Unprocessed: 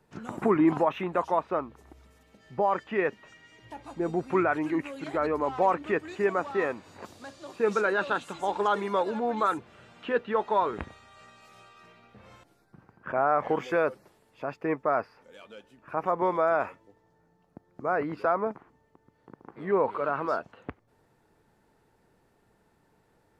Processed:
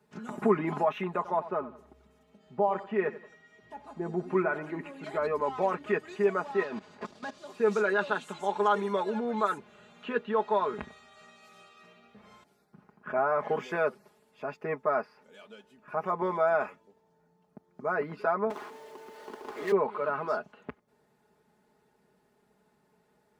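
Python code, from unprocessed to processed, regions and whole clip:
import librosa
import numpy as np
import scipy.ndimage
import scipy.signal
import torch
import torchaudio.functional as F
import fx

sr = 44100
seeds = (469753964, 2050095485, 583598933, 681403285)

y = fx.chain(x, sr, fx.high_shelf(hz=2300.0, db=-8.5),
    fx.echo_feedback(ms=89, feedback_pct=35, wet_db=-15.0), at=(1.16, 5.04))
y = fx.chain(y, sr, fx.leveller(passes=3),
    fx.level_steps(step_db=17),
    fx.air_absorb(metres=88.0), at=(6.63, 7.38))
y = fx.chain(y, sr, fx.highpass(hz=330.0, slope=24),
    fx.power_curve(exponent=0.5), at=(18.5, 19.72))
y = scipy.signal.sosfilt(scipy.signal.butter(2, 82.0, 'highpass', fs=sr, output='sos'), y)
y = y + 0.77 * np.pad(y, (int(4.8 * sr / 1000.0), 0))[:len(y)]
y = y * 10.0 ** (-4.0 / 20.0)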